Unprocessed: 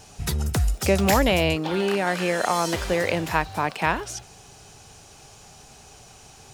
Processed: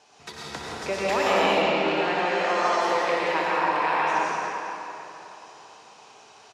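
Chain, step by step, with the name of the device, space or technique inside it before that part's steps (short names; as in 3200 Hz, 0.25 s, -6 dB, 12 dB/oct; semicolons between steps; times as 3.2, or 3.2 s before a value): station announcement (BPF 380–4800 Hz; bell 1000 Hz +5 dB 0.22 oct; loudspeakers at several distances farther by 21 m -10 dB, 58 m -9 dB; reverb RT60 3.4 s, pre-delay 87 ms, DRR -6.5 dB); 1.62–2.81 steep low-pass 8300 Hz 36 dB/oct; gain -7 dB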